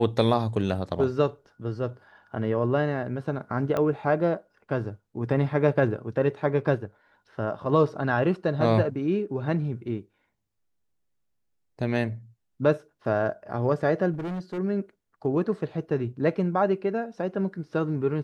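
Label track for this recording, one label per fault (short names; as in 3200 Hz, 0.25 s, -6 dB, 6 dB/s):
3.770000	3.770000	pop -15 dBFS
14.130000	14.590000	clipped -29 dBFS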